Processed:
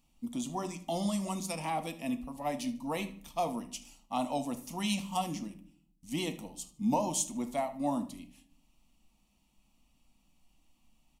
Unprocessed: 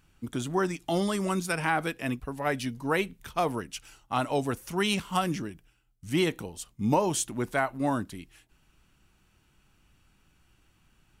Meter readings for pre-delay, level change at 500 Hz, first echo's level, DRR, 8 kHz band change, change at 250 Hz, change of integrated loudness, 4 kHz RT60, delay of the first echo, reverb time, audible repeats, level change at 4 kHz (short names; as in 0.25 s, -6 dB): 4 ms, -7.0 dB, -18.0 dB, 7.5 dB, -1.5 dB, -3.5 dB, -5.5 dB, 0.35 s, 76 ms, 0.55 s, 2, -5.5 dB